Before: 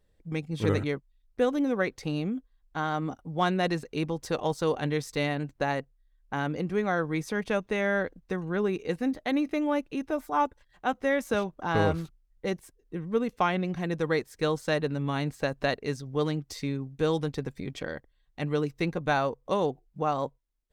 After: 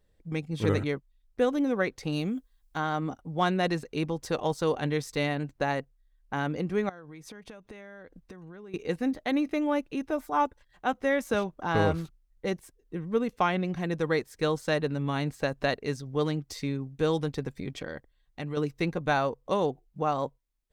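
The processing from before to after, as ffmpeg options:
-filter_complex "[0:a]asettb=1/sr,asplit=3[a][b][c];[a]atrim=end=2.124[d];[b]atrim=start=2.12:end=2.78,asetpts=PTS-STARTPTS,afade=t=in:d=0.004:c=qsin,afade=t=out:st=0.656:d=0.004:c=qsin,highshelf=f=4k:g=12[e];[c]atrim=start=2.776[f];[d][e]acrossfade=d=0.004:c1=hsin:c2=qsin[g];[g][f]acrossfade=d=0.004:c1=qsin:c2=hsin,asettb=1/sr,asplit=3[h][i][j];[h]atrim=end=6.894[k];[i]atrim=start=6.89:end=8.74,asetpts=PTS-STARTPTS,afade=t=in:d=0.004:c=qsin,afade=t=out:st=1.846:d=0.004:c=qsin,acompressor=threshold=-41dB:ratio=20:attack=3.2:release=140:knee=1:detection=peak[l];[j]atrim=start=8.736[m];[k][l]acrossfade=d=0.004:c1=hsin:c2=qsin[n];[n][m]acrossfade=d=0.004:c1=qsin:c2=hsin,asettb=1/sr,asplit=3[o][p][q];[o]atrim=end=17.764[r];[p]atrim=start=17.76:end=18.57,asetpts=PTS-STARTPTS,afade=t=in:d=0.004:c=qsin,afade=t=out:st=0.806:d=0.004:c=qsin,acompressor=threshold=-32dB:ratio=2.5:attack=3.2:release=140:knee=1:detection=peak[s];[q]atrim=start=18.566[t];[r][s]acrossfade=d=0.004:c1=hsin:c2=qsin[u];[u][t]acrossfade=d=0.004:c1=qsin:c2=hsin"

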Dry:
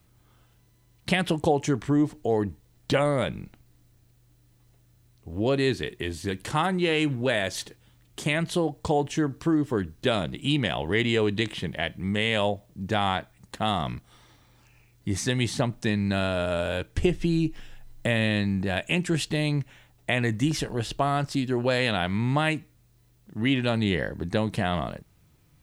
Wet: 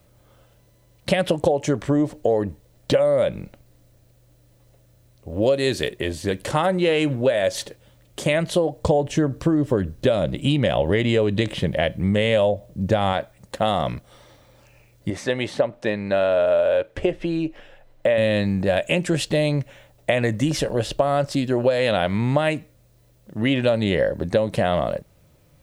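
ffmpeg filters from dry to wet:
-filter_complex "[0:a]asettb=1/sr,asplit=3[a][b][c];[a]atrim=end=5.424[d];[b]atrim=start=5.42:end=5.89,asetpts=PTS-STARTPTS,afade=t=in:d=0.004:c=qsin,afade=t=out:st=0.466:d=0.004:c=qsin,highshelf=f=3.8k:g=9.5[e];[c]atrim=start=5.886[f];[d][e]acrossfade=d=0.004:c1=hsin:c2=qsin[g];[g][f]acrossfade=d=0.004:c1=qsin:c2=hsin,asettb=1/sr,asplit=3[h][i][j];[h]atrim=end=8.814[k];[i]atrim=start=8.81:end=13.13,asetpts=PTS-STARTPTS,afade=t=in:d=0.004:c=qsin,afade=t=out:st=4.316:d=0.004:c=qsin,lowshelf=f=240:g=7.5[l];[j]atrim=start=13.126[m];[k][l]acrossfade=d=0.004:c1=hsin:c2=qsin[n];[n][m]acrossfade=d=0.004:c1=qsin:c2=hsin,asettb=1/sr,asplit=3[o][p][q];[o]atrim=end=15.104[r];[p]atrim=start=15.1:end=18.18,asetpts=PTS-STARTPTS,afade=t=in:d=0.004:c=qsin,afade=t=out:st=3.076:d=0.004:c=qsin,bass=f=250:g=-11,treble=f=4k:g=-13[s];[q]atrim=start=18.176[t];[r][s]acrossfade=d=0.004:c1=hsin:c2=qsin[u];[u][t]acrossfade=d=0.004:c1=qsin:c2=hsin,equalizer=f=560:w=3.5:g=14.5,acompressor=threshold=-19dB:ratio=10,volume=4dB"

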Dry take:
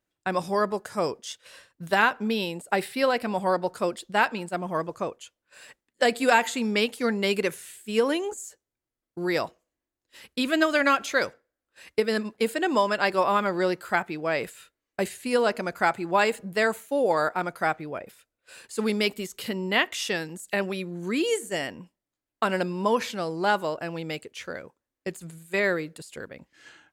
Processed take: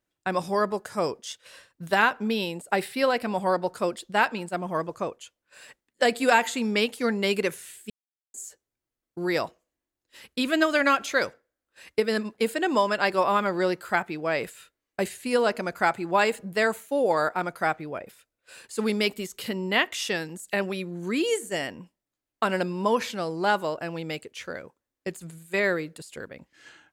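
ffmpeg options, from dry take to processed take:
-filter_complex "[0:a]asplit=3[a][b][c];[a]atrim=end=7.9,asetpts=PTS-STARTPTS,afade=t=out:st=7.896:d=0.004:c=hsin[d];[b]atrim=start=7.9:end=8.34,asetpts=PTS-STARTPTS,volume=0[e];[c]atrim=start=8.34,asetpts=PTS-STARTPTS,afade=t=in:d=0.004:c=hsin[f];[d][e][f]concat=n=3:v=0:a=1"

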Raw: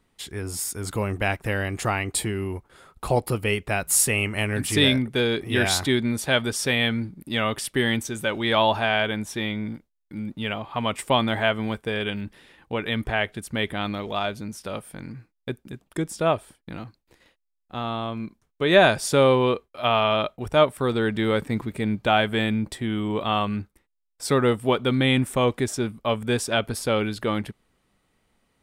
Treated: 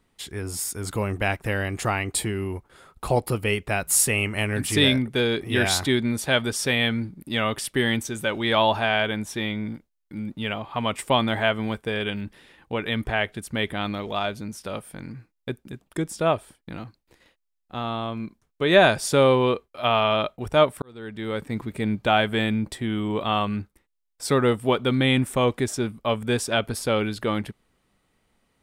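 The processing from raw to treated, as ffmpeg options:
-filter_complex "[0:a]asplit=2[a][b];[a]atrim=end=20.82,asetpts=PTS-STARTPTS,afade=t=out:st=20.816:d=0.004:c=hsin[c];[b]atrim=start=20.82,asetpts=PTS-STARTPTS,afade=t=in:d=1.02[d];[c][d]concat=n=2:v=0:a=1"

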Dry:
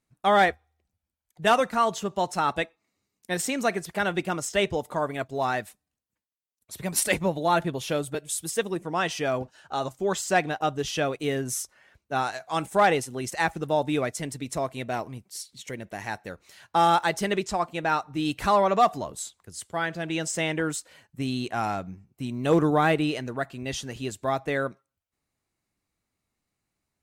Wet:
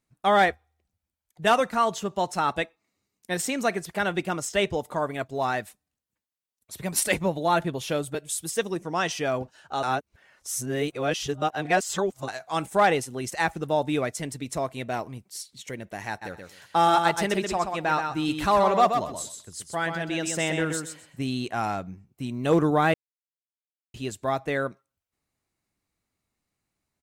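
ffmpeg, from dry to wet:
-filter_complex "[0:a]asettb=1/sr,asplit=3[a][b][c];[a]atrim=end=8.574[d];[b]atrim=start=8.57:end=9.12,asetpts=PTS-STARTPTS,afade=t=in:d=0.004:c=qsin,afade=t=out:st=0.546:d=0.004:c=qsin,equalizer=f=5.8k:w=3.6:g=8.5[e];[c]atrim=start=9.116[f];[d][e]acrossfade=d=0.004:c1=hsin:c2=qsin[g];[g][f]acrossfade=d=0.004:c1=qsin:c2=hsin,asplit=3[h][i][j];[h]afade=t=out:st=16.21:d=0.02[k];[i]aecho=1:1:127|254|381:0.501|0.0902|0.0162,afade=t=in:st=16.21:d=0.02,afade=t=out:st=21.26:d=0.02[l];[j]afade=t=in:st=21.26:d=0.02[m];[k][l][m]amix=inputs=3:normalize=0,asplit=5[n][o][p][q][r];[n]atrim=end=9.832[s];[o]atrim=start=9.828:end=12.282,asetpts=PTS-STARTPTS,areverse[t];[p]atrim=start=12.278:end=22.94,asetpts=PTS-STARTPTS,afade=t=out:st=10.658:d=0.004:c=hsin[u];[q]atrim=start=22.94:end=23.94,asetpts=PTS-STARTPTS,volume=0[v];[r]atrim=start=23.94,asetpts=PTS-STARTPTS,afade=t=in:d=0.004:c=hsin[w];[s][t]acrossfade=d=0.004:c1=hsin:c2=hsin[x];[u][v][w]concat=n=3:v=0:a=1[y];[x][y]acrossfade=d=0.004:c1=hsin:c2=hsin"

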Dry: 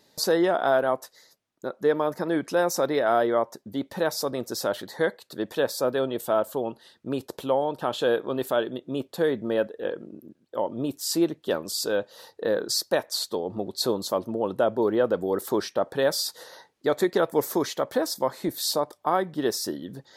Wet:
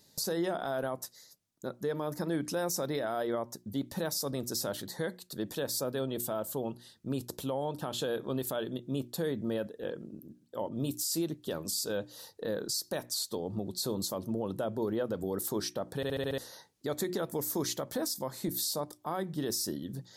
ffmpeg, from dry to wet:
-filter_complex "[0:a]asettb=1/sr,asplit=3[a][b][c];[a]atrim=end=10.694[d];[b]atrim=start=10.69:end=11.26,asetpts=PTS-STARTPTS,afade=t=in:d=0.004:c=qsin,afade=t=out:st=0.566:d=0.004:c=qsin,adynamicequalizer=threshold=0.00447:dfrequency=2200:dqfactor=0.7:tfrequency=2200:tqfactor=0.7:attack=5:release=100:ratio=0.375:range=2.5:mode=boostabove:tftype=highshelf[e];[c]atrim=start=11.256[f];[d][e]acrossfade=d=0.004:c1=hsin:c2=qsin[g];[g][f]acrossfade=d=0.004:c1=qsin:c2=hsin,asplit=7[h][i][j][k][l][m][n];[h]atrim=end=16.032[o];[i]atrim=start=15.958:end=16.032[p];[j]atrim=start=15.958:end=16.032[q];[k]atrim=start=15.958:end=16.032[r];[l]atrim=start=15.958:end=16.032[s];[m]atrim=start=15.958:end=16.032[t];[n]atrim=start=16.378[u];[o][p]acrossfade=d=0.004:c1=hsin:c2=hsin[v];[v][q]acrossfade=d=0.004:c1=hsin:c2=hsin[w];[w][r]acrossfade=d=0.004:c1=hsin:c2=hsin[x];[x][s]acrossfade=d=0.004:c1=hsin:c2=hsin[y];[y][t]acrossfade=d=0.004:c1=hsin:c2=hsin[z];[z][u]acrossfade=d=0.004:c1=hsin:c2=hsin,bass=f=250:g=12,treble=f=4k:g=12,bandreject=f=60:t=h:w=6,bandreject=f=120:t=h:w=6,bandreject=f=180:t=h:w=6,bandreject=f=240:t=h:w=6,bandreject=f=300:t=h:w=6,bandreject=f=360:t=h:w=6,alimiter=limit=-15.5dB:level=0:latency=1:release=80,volume=-8dB"

